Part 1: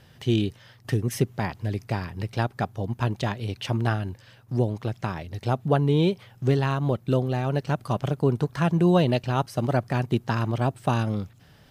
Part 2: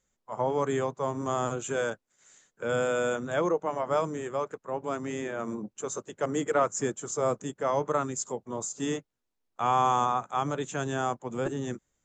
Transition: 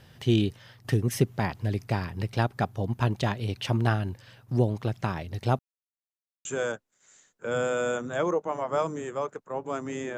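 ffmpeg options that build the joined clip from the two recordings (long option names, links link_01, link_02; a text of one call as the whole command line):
ffmpeg -i cue0.wav -i cue1.wav -filter_complex "[0:a]apad=whole_dur=10.17,atrim=end=10.17,asplit=2[link_01][link_02];[link_01]atrim=end=5.59,asetpts=PTS-STARTPTS,afade=type=out:start_time=5.586:duration=0.004:curve=hsin[link_03];[link_02]atrim=start=5.59:end=6.45,asetpts=PTS-STARTPTS,volume=0[link_04];[1:a]atrim=start=1.63:end=5.35,asetpts=PTS-STARTPTS,afade=type=in:duration=0.004:curve=hsin[link_05];[link_03][link_04][link_05]concat=n=3:v=0:a=1" out.wav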